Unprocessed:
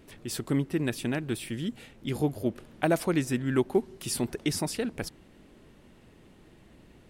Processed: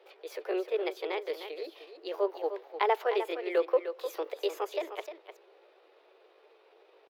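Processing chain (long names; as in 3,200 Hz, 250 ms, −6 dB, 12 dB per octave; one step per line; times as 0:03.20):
Butterworth high-pass 280 Hz 72 dB per octave
high-shelf EQ 3,700 Hz +12 dB
pitch shifter +5 semitones
high-frequency loss of the air 370 metres
on a send: single-tap delay 304 ms −10 dB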